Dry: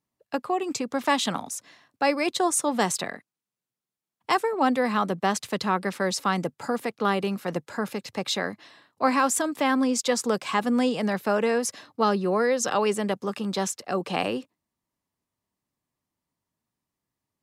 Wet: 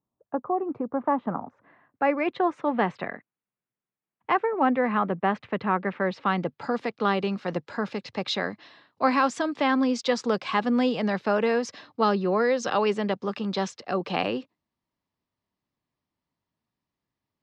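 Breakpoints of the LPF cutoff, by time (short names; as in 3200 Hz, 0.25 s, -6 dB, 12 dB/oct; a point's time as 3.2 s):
LPF 24 dB/oct
1.26 s 1200 Hz
2.27 s 2500 Hz
5.97 s 2500 Hz
6.74 s 5000 Hz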